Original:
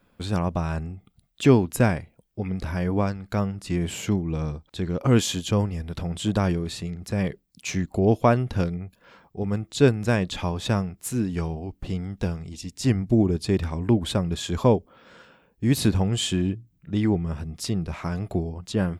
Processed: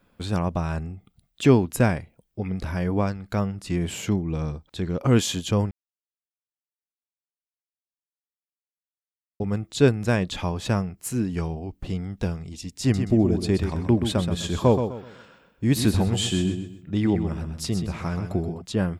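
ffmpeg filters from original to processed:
-filter_complex "[0:a]asettb=1/sr,asplit=3[a][b][c];[a]atrim=end=10.464[d];[b]atrim=start=10.46:end=11.41,asetpts=PTS-STARTPTS,afade=t=in:d=0.004:c=qsin,afade=t=out:st=0.946:d=0.004:c=qsin,bandreject=f=3.6k:w=12[e];[c]atrim=start=11.406[f];[d][e]acrossfade=d=0.004:c1=hsin:c2=qsin[g];[g][f]acrossfade=d=0.004:c1=qsin:c2=hsin,asettb=1/sr,asplit=3[h][i][j];[h]atrim=end=12.814[k];[i]atrim=start=12.81:end=18.62,asetpts=PTS-STARTPTS,afade=t=in:d=0.004:c=qsin,afade=t=out:st=5.806:d=0.004:c=qsin,aecho=1:1:127|254|381|508:0.398|0.123|0.0383|0.0119,atrim=end_sample=256221[l];[j]atrim=start=18.616[m];[k][l]acrossfade=d=0.004:c1=hsin:c2=qsin[n];[n][m]acrossfade=d=0.004:c1=qsin:c2=hsin,asplit=3[o][p][q];[o]atrim=end=5.71,asetpts=PTS-STARTPTS,afade=t=out:st=5.706:d=0.004:c=hsin[r];[p]atrim=start=5.71:end=9.4,asetpts=PTS-STARTPTS,volume=0[s];[q]atrim=start=9.4,asetpts=PTS-STARTPTS,afade=t=in:d=0.004:c=hsin[t];[r][s][t]concat=n=3:v=0:a=1"

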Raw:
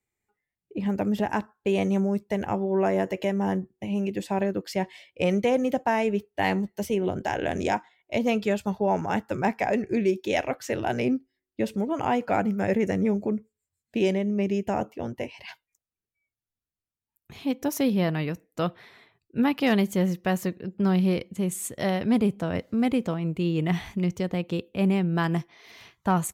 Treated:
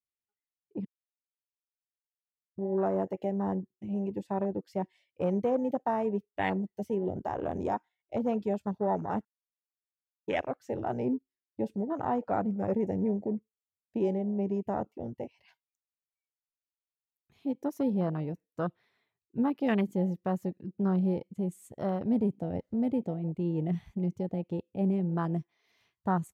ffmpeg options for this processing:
-filter_complex "[0:a]asplit=5[a][b][c][d][e];[a]atrim=end=0.85,asetpts=PTS-STARTPTS,afade=t=out:st=0.846:d=0.004:c=hsin[f];[b]atrim=start=0.85:end=2.58,asetpts=PTS-STARTPTS,volume=0[g];[c]atrim=start=2.58:end=9.25,asetpts=PTS-STARTPTS,afade=t=in:d=0.004:c=hsin,afade=t=out:st=6.666:d=0.004:c=hsin[h];[d]atrim=start=9.25:end=10.28,asetpts=PTS-STARTPTS,volume=0[i];[e]atrim=start=10.28,asetpts=PTS-STARTPTS,afade=t=in:d=0.004:c=hsin[j];[f][g][h][i][j]concat=n=5:v=0:a=1,afwtdn=0.0398,volume=-5dB"

